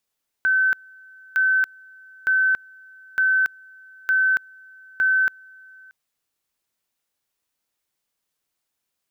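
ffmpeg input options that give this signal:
ffmpeg -f lavfi -i "aevalsrc='pow(10,(-15.5-28*gte(mod(t,0.91),0.28))/20)*sin(2*PI*1530*t)':duration=5.46:sample_rate=44100" out.wav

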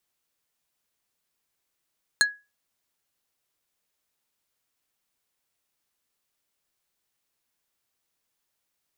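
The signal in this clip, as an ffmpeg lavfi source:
ffmpeg -f lavfi -i "aevalsrc='0.2*pow(10,-3*t/0.26)*sin(2*PI*1670*t)+0.168*pow(10,-3*t/0.087)*sin(2*PI*4175*t)+0.141*pow(10,-3*t/0.049)*sin(2*PI*6680*t)+0.119*pow(10,-3*t/0.038)*sin(2*PI*8350*t)+0.1*pow(10,-3*t/0.028)*sin(2*PI*10855*t)':duration=0.45:sample_rate=44100" out.wav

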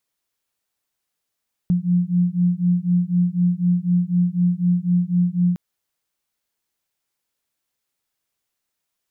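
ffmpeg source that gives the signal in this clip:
ffmpeg -f lavfi -i "aevalsrc='0.112*(sin(2*PI*175*t)+sin(2*PI*179*t))':duration=3.86:sample_rate=44100" out.wav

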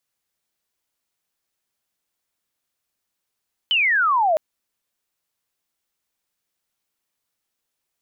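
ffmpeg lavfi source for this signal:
ffmpeg -f lavfi -i "aevalsrc='pow(10,(-15.5+0.5*t/0.66)/20)*sin(2*PI*3100*0.66/log(600/3100)*(exp(log(600/3100)*t/0.66)-1))':duration=0.66:sample_rate=44100" out.wav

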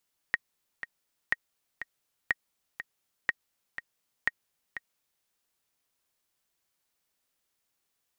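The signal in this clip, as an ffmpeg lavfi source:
ffmpeg -f lavfi -i "aevalsrc='pow(10,(-11.5-11.5*gte(mod(t,2*60/122),60/122))/20)*sin(2*PI*1880*mod(t,60/122))*exp(-6.91*mod(t,60/122)/0.03)':duration=4.91:sample_rate=44100" out.wav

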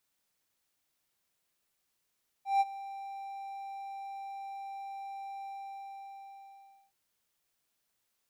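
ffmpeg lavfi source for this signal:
ffmpeg -f lavfi -i "aevalsrc='0.106*(1-4*abs(mod(787*t+0.25,1)-0.5))':duration=4.47:sample_rate=44100,afade=type=in:duration=0.156,afade=type=out:start_time=0.156:duration=0.033:silence=0.126,afade=type=out:start_time=2.99:duration=1.48" out.wav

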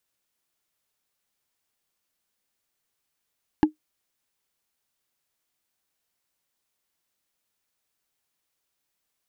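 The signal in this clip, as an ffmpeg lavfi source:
ffmpeg -f lavfi -i "aevalsrc='0.355*pow(10,-3*t/0.12)*sin(2*PI*307*t)+0.168*pow(10,-3*t/0.036)*sin(2*PI*846.4*t)+0.0794*pow(10,-3*t/0.016)*sin(2*PI*1659*t)+0.0376*pow(10,-3*t/0.009)*sin(2*PI*2742.4*t)+0.0178*pow(10,-3*t/0.005)*sin(2*PI*4095.4*t)':duration=0.45:sample_rate=44100" out.wav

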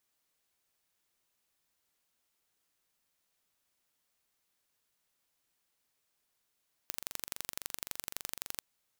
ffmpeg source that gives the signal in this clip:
ffmpeg -f lavfi -i "aevalsrc='0.376*eq(mod(n,1861),0)*(0.5+0.5*eq(mod(n,3722),0))':duration=1.7:sample_rate=44100" out.wav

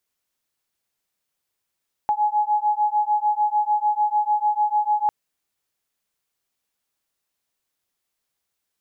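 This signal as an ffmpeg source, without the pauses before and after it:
ffmpeg -f lavfi -i "aevalsrc='0.0891*(sin(2*PI*838*t)+sin(2*PI*844.7*t))':duration=3:sample_rate=44100" out.wav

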